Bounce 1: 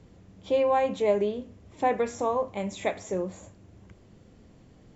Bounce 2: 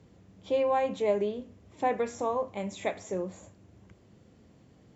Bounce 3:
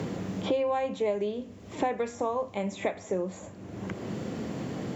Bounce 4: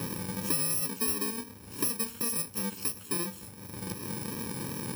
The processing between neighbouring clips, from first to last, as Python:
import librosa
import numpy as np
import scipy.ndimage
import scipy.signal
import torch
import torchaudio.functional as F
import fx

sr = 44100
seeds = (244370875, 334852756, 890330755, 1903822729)

y1 = scipy.signal.sosfilt(scipy.signal.butter(2, 70.0, 'highpass', fs=sr, output='sos'), x)
y1 = y1 * 10.0 ** (-3.0 / 20.0)
y2 = fx.band_squash(y1, sr, depth_pct=100)
y3 = fx.bit_reversed(y2, sr, seeds[0], block=64)
y3 = fx.vibrato(y3, sr, rate_hz=2.8, depth_cents=31.0)
y3 = y3 * 10.0 ** (-1.0 / 20.0)